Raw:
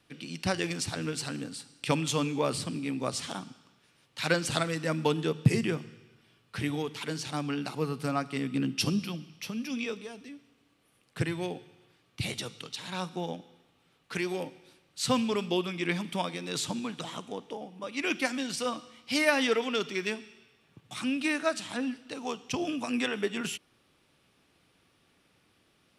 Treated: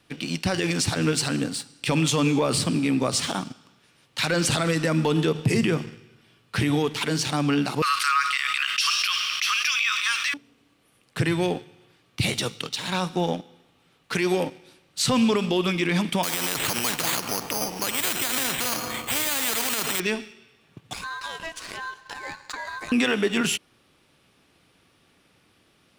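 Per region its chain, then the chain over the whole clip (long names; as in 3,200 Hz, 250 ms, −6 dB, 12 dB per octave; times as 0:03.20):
0:07.82–0:10.34: Butterworth high-pass 1,100 Hz 72 dB per octave + high-shelf EQ 9,100 Hz −11 dB + envelope flattener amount 70%
0:16.23–0:20.00: bad sample-rate conversion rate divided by 8×, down filtered, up hold + every bin compressed towards the loudest bin 4 to 1
0:20.93–0:22.92: downward compressor 4 to 1, threshold −40 dBFS + ring modulation 1,300 Hz
whole clip: leveller curve on the samples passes 1; brickwall limiter −20.5 dBFS; level +7.5 dB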